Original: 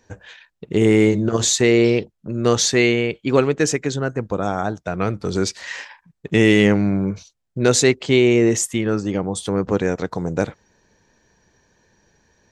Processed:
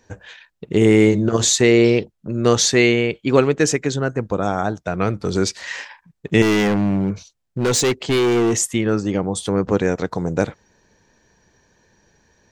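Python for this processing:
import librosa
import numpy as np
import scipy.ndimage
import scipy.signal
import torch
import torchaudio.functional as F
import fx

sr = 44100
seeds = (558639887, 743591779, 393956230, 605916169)

y = fx.clip_hard(x, sr, threshold_db=-16.0, at=(6.42, 8.54))
y = y * librosa.db_to_amplitude(1.5)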